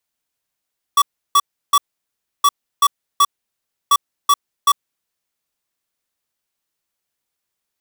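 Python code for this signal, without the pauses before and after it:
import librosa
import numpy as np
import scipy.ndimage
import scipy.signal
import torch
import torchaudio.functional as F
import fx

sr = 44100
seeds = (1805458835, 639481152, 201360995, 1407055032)

y = fx.beep_pattern(sr, wave='square', hz=1140.0, on_s=0.05, off_s=0.33, beeps=3, pause_s=0.66, groups=3, level_db=-11.5)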